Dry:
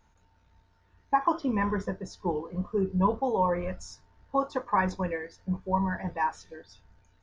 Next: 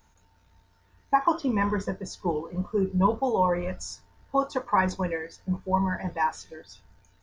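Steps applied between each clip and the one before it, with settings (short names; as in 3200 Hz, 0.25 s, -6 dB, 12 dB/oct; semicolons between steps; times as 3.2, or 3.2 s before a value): high shelf 6100 Hz +11.5 dB; gain +2 dB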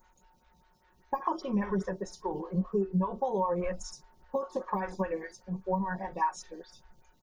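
comb 5.4 ms, depth 74%; compressor 6:1, threshold -24 dBFS, peak gain reduction 10 dB; photocell phaser 5 Hz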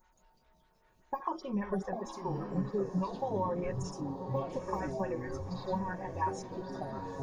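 on a send: diffused feedback echo 0.932 s, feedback 42%, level -9 dB; on the sum: echoes that change speed 0.125 s, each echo -6 st, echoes 3, each echo -6 dB; gain -4.5 dB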